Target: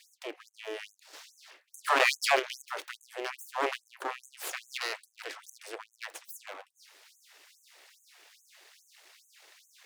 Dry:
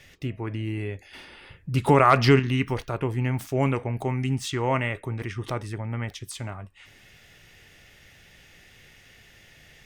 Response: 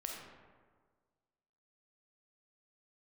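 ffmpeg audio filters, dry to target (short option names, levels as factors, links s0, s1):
-af "aeval=exprs='abs(val(0))':c=same,afftfilt=real='re*gte(b*sr/1024,290*pow(6300/290,0.5+0.5*sin(2*PI*2.4*pts/sr)))':imag='im*gte(b*sr/1024,290*pow(6300/290,0.5+0.5*sin(2*PI*2.4*pts/sr)))':win_size=1024:overlap=0.75"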